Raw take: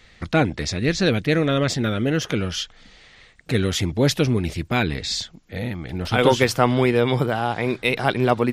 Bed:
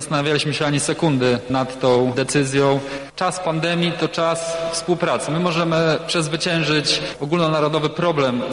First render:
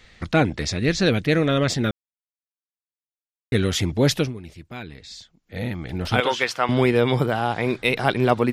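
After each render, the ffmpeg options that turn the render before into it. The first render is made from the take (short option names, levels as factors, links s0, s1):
-filter_complex "[0:a]asettb=1/sr,asplit=3[s0][s1][s2];[s0]atrim=end=6.204[s3];[s1]atrim=start=6.2:end=6.69,asetpts=PTS-STARTPTS,afade=t=in:d=0.004:c=qsin,afade=t=out:st=0.486:d=0.004:c=qsin,bandpass=f=2100:t=q:w=0.54[s4];[s2]atrim=start=6.686[s5];[s3][s4]acrossfade=d=0.004:c1=hsin:c2=qsin[s6];[s6][s5]acrossfade=d=0.004:c1=qsin:c2=hsin,asplit=5[s7][s8][s9][s10][s11];[s7]atrim=end=1.91,asetpts=PTS-STARTPTS,afade=t=out:st=1.906:d=0.004:c=hsin[s12];[s8]atrim=start=1.91:end=3.52,asetpts=PTS-STARTPTS,volume=0[s13];[s9]atrim=start=3.52:end=4.33,asetpts=PTS-STARTPTS,afade=t=in:d=0.004:c=hsin,afade=t=out:st=0.65:d=0.16:silence=0.188365[s14];[s10]atrim=start=4.33:end=5.45,asetpts=PTS-STARTPTS,volume=0.188[s15];[s11]atrim=start=5.45,asetpts=PTS-STARTPTS,afade=t=in:d=0.16:silence=0.188365[s16];[s12][s13][s14][s15][s16]concat=n=5:v=0:a=1"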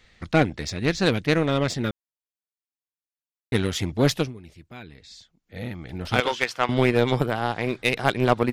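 -af "aeval=exprs='0.75*(cos(1*acos(clip(val(0)/0.75,-1,1)))-cos(1*PI/2))+0.0531*(cos(7*acos(clip(val(0)/0.75,-1,1)))-cos(7*PI/2))':c=same"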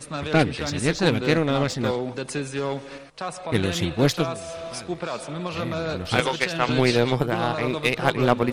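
-filter_complex "[1:a]volume=0.282[s0];[0:a][s0]amix=inputs=2:normalize=0"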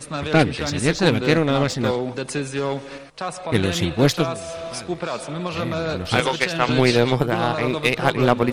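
-af "volume=1.41,alimiter=limit=0.794:level=0:latency=1"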